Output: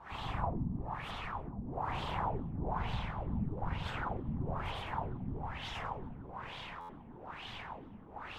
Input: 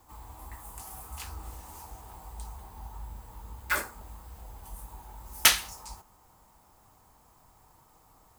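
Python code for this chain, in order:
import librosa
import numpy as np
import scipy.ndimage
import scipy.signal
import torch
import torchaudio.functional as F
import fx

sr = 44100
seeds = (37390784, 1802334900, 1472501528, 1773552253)

p1 = fx.high_shelf(x, sr, hz=6700.0, db=8.5)
p2 = fx.over_compress(p1, sr, threshold_db=-43.0, ratio=-0.5)
p3 = fx.quant_dither(p2, sr, seeds[0], bits=8, dither='triangular')
p4 = fx.rev_spring(p3, sr, rt60_s=2.2, pass_ms=(46,), chirp_ms=70, drr_db=-6.5)
p5 = fx.whisperise(p4, sr, seeds[1])
p6 = fx.filter_lfo_lowpass(p5, sr, shape='sine', hz=1.1, low_hz=220.0, high_hz=3500.0, q=3.5)
p7 = p6 + fx.echo_filtered(p6, sr, ms=1090, feedback_pct=70, hz=2200.0, wet_db=-20.0, dry=0)
p8 = fx.buffer_glitch(p7, sr, at_s=(6.8,), block=512, repeats=7)
y = p8 * 10.0 ** (-5.0 / 20.0)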